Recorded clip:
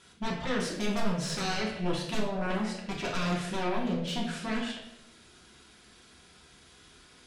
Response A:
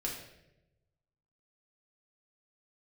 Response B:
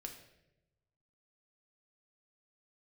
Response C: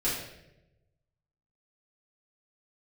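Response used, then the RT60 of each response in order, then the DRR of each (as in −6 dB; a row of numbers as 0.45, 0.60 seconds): A; 0.90, 0.90, 0.90 seconds; −3.0, 3.0, −10.5 decibels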